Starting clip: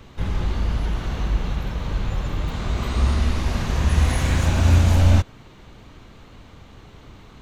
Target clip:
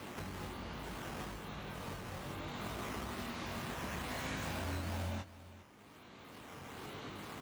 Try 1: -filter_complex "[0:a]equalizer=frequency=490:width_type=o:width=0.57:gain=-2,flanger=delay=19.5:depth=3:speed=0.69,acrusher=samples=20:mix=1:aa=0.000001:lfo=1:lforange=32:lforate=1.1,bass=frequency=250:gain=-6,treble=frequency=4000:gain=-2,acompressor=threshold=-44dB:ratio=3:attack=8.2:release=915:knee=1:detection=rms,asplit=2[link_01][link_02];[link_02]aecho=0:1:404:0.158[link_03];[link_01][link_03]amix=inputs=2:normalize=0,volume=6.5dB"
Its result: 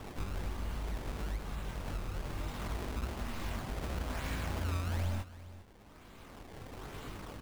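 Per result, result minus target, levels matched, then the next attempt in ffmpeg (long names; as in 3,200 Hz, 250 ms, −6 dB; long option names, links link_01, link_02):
sample-and-hold swept by an LFO: distortion +6 dB; 125 Hz band +3.0 dB
-filter_complex "[0:a]equalizer=frequency=490:width_type=o:width=0.57:gain=-2,flanger=delay=19.5:depth=3:speed=0.69,acrusher=samples=6:mix=1:aa=0.000001:lfo=1:lforange=9.6:lforate=1.1,bass=frequency=250:gain=-6,treble=frequency=4000:gain=-2,acompressor=threshold=-44dB:ratio=3:attack=8.2:release=915:knee=1:detection=rms,asplit=2[link_01][link_02];[link_02]aecho=0:1:404:0.158[link_03];[link_01][link_03]amix=inputs=2:normalize=0,volume=6.5dB"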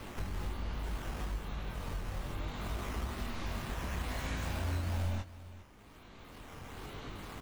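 125 Hz band +3.0 dB
-filter_complex "[0:a]equalizer=frequency=490:width_type=o:width=0.57:gain=-2,flanger=delay=19.5:depth=3:speed=0.69,acrusher=samples=6:mix=1:aa=0.000001:lfo=1:lforange=9.6:lforate=1.1,bass=frequency=250:gain=-6,treble=frequency=4000:gain=-2,acompressor=threshold=-44dB:ratio=3:attack=8.2:release=915:knee=1:detection=rms,highpass=120,asplit=2[link_01][link_02];[link_02]aecho=0:1:404:0.158[link_03];[link_01][link_03]amix=inputs=2:normalize=0,volume=6.5dB"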